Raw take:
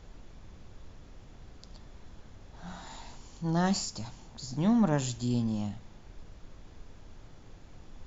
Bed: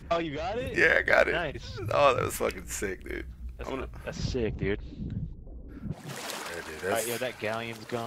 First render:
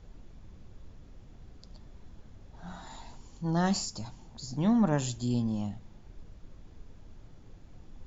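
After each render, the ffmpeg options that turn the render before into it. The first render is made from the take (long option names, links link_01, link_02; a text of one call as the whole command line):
ffmpeg -i in.wav -af "afftdn=noise_reduction=6:noise_floor=-52" out.wav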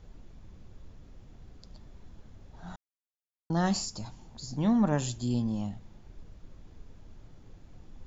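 ffmpeg -i in.wav -filter_complex "[0:a]asplit=3[link_01][link_02][link_03];[link_01]atrim=end=2.76,asetpts=PTS-STARTPTS,afade=type=out:start_time=2.756:duration=0.004:curve=hsin[link_04];[link_02]atrim=start=2.76:end=3.5,asetpts=PTS-STARTPTS,volume=0[link_05];[link_03]atrim=start=3.5,asetpts=PTS-STARTPTS,afade=type=in:duration=0.004:curve=hsin[link_06];[link_04][link_05][link_06]concat=n=3:v=0:a=1" out.wav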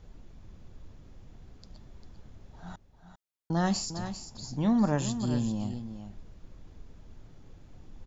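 ffmpeg -i in.wav -af "aecho=1:1:398:0.316" out.wav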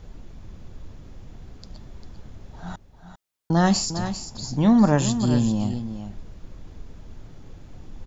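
ffmpeg -i in.wav -af "volume=8.5dB" out.wav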